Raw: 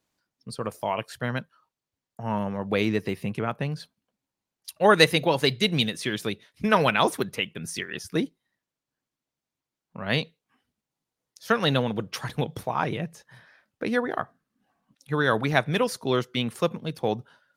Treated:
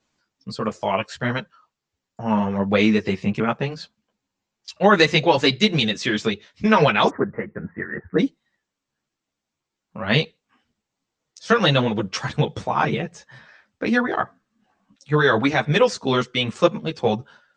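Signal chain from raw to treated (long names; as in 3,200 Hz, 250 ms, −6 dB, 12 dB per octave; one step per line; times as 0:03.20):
Chebyshev low-pass filter 7,600 Hz, order 6, from 0:07.08 1,900 Hz, from 0:08.18 8,000 Hz
boost into a limiter +10 dB
string-ensemble chorus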